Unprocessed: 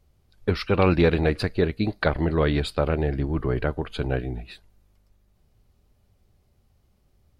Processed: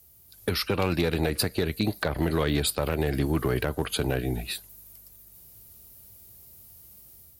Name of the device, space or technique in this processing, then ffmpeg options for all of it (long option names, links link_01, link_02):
FM broadcast chain: -filter_complex "[0:a]highpass=55,dynaudnorm=framelen=240:gausssize=3:maxgain=5.5dB,acrossover=split=150|1400[link_01][link_02][link_03];[link_01]acompressor=threshold=-29dB:ratio=4[link_04];[link_02]acompressor=threshold=-22dB:ratio=4[link_05];[link_03]acompressor=threshold=-36dB:ratio=4[link_06];[link_04][link_05][link_06]amix=inputs=3:normalize=0,aemphasis=mode=production:type=50fm,alimiter=limit=-13.5dB:level=0:latency=1:release=57,asoftclip=type=hard:threshold=-16dB,lowpass=frequency=15000:width=0.5412,lowpass=frequency=15000:width=1.3066,aemphasis=mode=production:type=50fm"